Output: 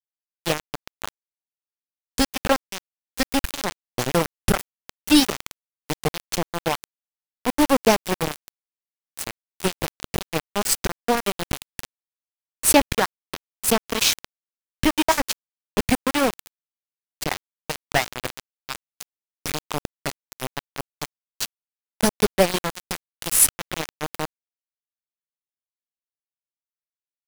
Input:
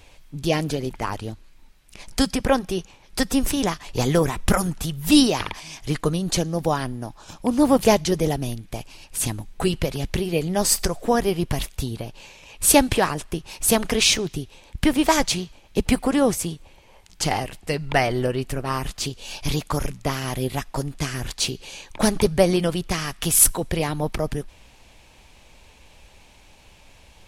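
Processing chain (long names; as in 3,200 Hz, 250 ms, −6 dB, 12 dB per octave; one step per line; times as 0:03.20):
reverb reduction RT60 0.65 s
noise in a band 1,200–3,100 Hz −37 dBFS
centre clipping without the shift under −16.5 dBFS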